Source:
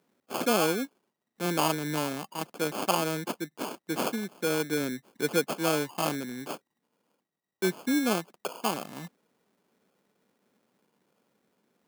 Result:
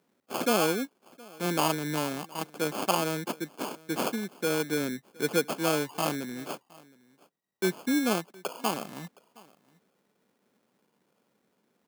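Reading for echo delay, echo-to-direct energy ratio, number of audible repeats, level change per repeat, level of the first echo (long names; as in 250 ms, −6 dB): 717 ms, −24.0 dB, 1, repeats not evenly spaced, −24.0 dB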